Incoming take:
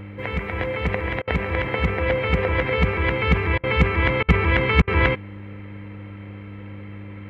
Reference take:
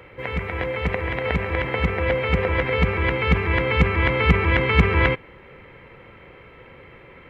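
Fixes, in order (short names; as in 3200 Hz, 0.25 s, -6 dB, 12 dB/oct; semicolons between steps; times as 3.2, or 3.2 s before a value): de-hum 100.8 Hz, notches 3; interpolate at 1.22/3.58/4.23/4.82, 54 ms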